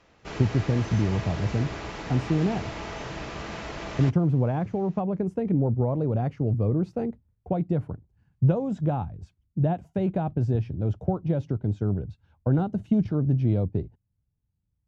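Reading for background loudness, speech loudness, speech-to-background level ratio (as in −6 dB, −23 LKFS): −36.0 LKFS, −26.5 LKFS, 9.5 dB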